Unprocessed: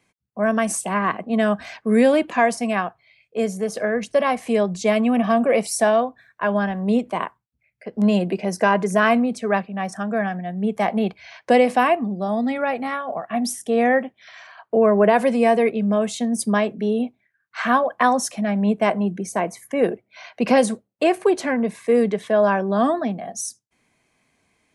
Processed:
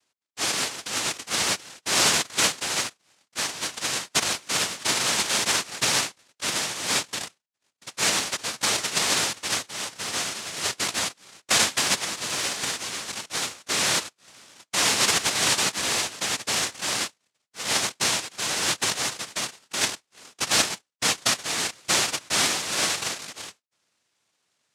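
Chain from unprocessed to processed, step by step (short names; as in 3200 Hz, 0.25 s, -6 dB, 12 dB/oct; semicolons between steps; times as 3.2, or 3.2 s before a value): 1.45–2.87 dynamic EQ 1200 Hz, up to +5 dB, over -30 dBFS, Q 1.2; noise vocoder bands 1; gain -6.5 dB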